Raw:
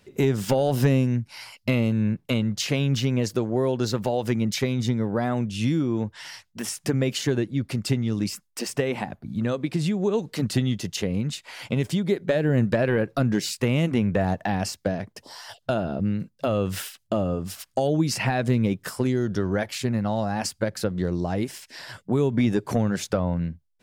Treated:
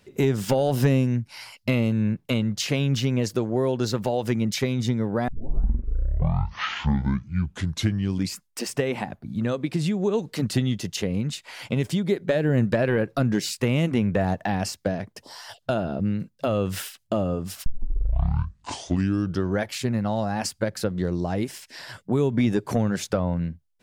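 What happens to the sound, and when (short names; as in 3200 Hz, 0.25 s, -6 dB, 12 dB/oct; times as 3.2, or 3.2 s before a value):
5.28 tape start 3.20 s
17.66 tape start 1.82 s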